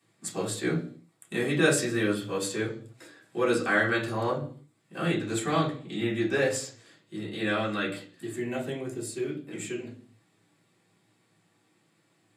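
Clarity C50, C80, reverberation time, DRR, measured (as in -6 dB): 9.5 dB, 14.5 dB, 0.50 s, -7.0 dB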